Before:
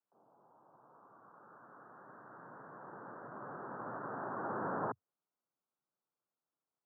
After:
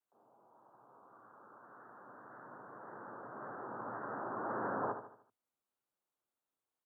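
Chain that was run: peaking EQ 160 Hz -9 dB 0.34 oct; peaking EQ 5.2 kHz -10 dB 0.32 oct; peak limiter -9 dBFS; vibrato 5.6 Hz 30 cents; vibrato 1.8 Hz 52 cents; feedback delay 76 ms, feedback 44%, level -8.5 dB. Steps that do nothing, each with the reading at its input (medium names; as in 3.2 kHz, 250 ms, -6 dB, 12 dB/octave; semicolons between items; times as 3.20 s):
peaking EQ 5.2 kHz: input has nothing above 1.9 kHz; peak limiter -9 dBFS: peak at its input -24.0 dBFS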